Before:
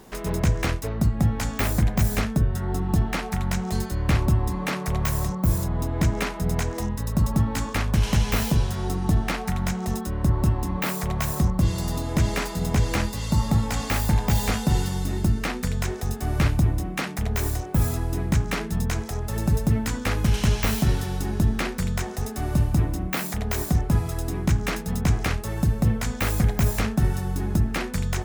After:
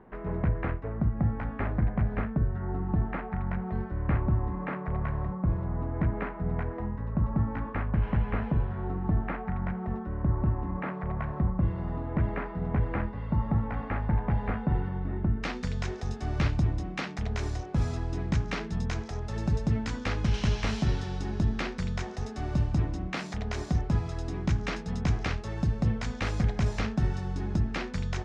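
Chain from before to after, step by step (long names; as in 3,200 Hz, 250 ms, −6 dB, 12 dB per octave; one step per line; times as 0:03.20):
low-pass filter 1,900 Hz 24 dB per octave, from 0:15.43 5,800 Hz
level −5.5 dB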